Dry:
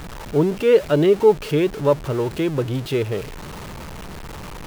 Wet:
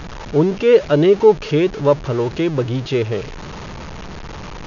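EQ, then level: brick-wall FIR low-pass 6900 Hz; +3.0 dB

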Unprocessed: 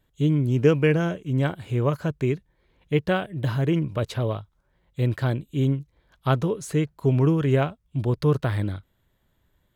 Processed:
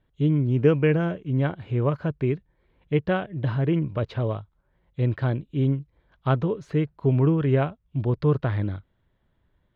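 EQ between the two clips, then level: air absorption 270 m; 0.0 dB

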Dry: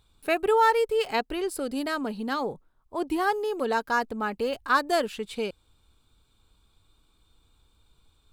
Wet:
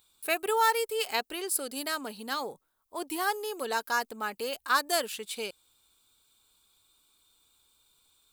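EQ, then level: RIAA curve recording; -4.0 dB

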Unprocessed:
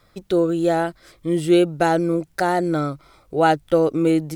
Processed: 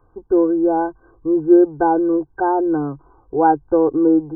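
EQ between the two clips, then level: brick-wall FIR low-pass 1600 Hz; bell 140 Hz +4 dB 0.32 oct; fixed phaser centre 900 Hz, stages 8; +5.0 dB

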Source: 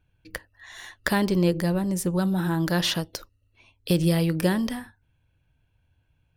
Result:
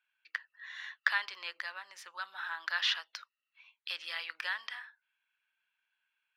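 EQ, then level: HPF 1300 Hz 24 dB/oct; air absorption 250 m; +2.0 dB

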